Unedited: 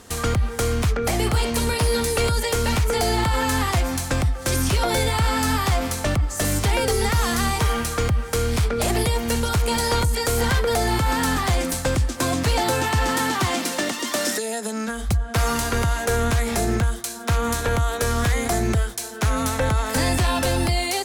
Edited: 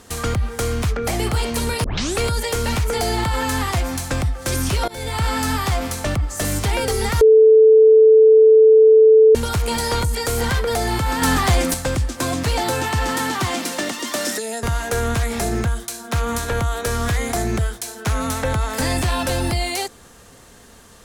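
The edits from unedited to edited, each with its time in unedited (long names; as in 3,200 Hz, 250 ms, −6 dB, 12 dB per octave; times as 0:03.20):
0:01.84: tape start 0.35 s
0:04.88–0:05.23: fade in, from −22.5 dB
0:07.21–0:09.35: beep over 439 Hz −6.5 dBFS
0:11.22–0:11.74: clip gain +4.5 dB
0:14.63–0:15.79: remove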